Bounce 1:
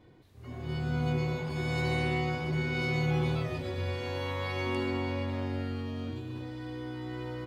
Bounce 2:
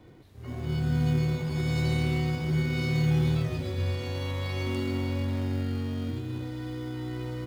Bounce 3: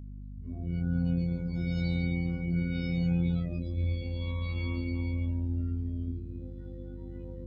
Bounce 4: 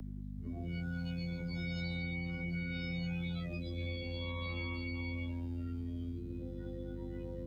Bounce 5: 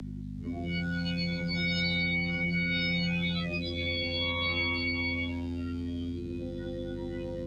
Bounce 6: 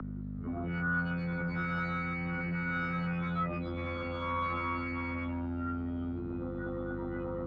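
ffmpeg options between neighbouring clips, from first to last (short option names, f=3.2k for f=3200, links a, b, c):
-filter_complex "[0:a]acrossover=split=290|3000[a][b][c];[b]acompressor=threshold=-47dB:ratio=2.5[d];[a][d][c]amix=inputs=3:normalize=0,asplit=2[e][f];[f]acrusher=samples=26:mix=1:aa=0.000001,volume=-10.5dB[g];[e][g]amix=inputs=2:normalize=0,volume=3.5dB"
-af "afftdn=nr=26:nf=-35,afftfilt=real='hypot(re,im)*cos(PI*b)':imag='0':win_size=2048:overlap=0.75,aeval=exprs='val(0)+0.00891*(sin(2*PI*50*n/s)+sin(2*PI*2*50*n/s)/2+sin(2*PI*3*50*n/s)/3+sin(2*PI*4*50*n/s)/4+sin(2*PI*5*50*n/s)/5)':c=same"
-filter_complex "[0:a]lowshelf=f=160:g=-10,acrossover=split=160|700|1200[a][b][c][d];[b]alimiter=level_in=17.5dB:limit=-24dB:level=0:latency=1,volume=-17.5dB[e];[a][e][c][d]amix=inputs=4:normalize=0,acrossover=split=160|1800[f][g][h];[f]acompressor=threshold=-50dB:ratio=4[i];[g]acompressor=threshold=-51dB:ratio=4[j];[h]acompressor=threshold=-55dB:ratio=4[k];[i][j][k]amix=inputs=3:normalize=0,volume=8dB"
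-filter_complex "[0:a]lowpass=4.6k,acrossover=split=110[a][b];[a]alimiter=level_in=24.5dB:limit=-24dB:level=0:latency=1:release=396,volume=-24.5dB[c];[c][b]amix=inputs=2:normalize=0,crystalizer=i=5:c=0,volume=7.5dB"
-af "asoftclip=type=tanh:threshold=-29dB,lowpass=f=1.3k:t=q:w=6.9"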